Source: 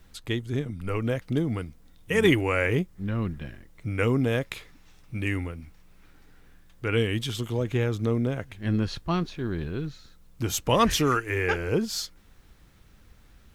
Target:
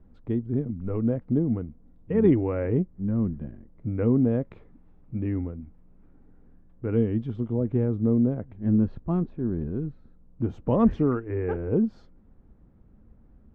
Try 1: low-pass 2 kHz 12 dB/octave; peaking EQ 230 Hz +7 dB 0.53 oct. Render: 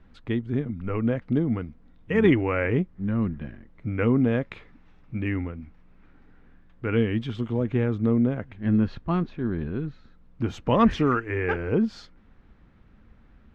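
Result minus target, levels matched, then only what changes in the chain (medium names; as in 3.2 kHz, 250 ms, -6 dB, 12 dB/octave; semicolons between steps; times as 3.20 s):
2 kHz band +14.5 dB
change: low-pass 660 Hz 12 dB/octave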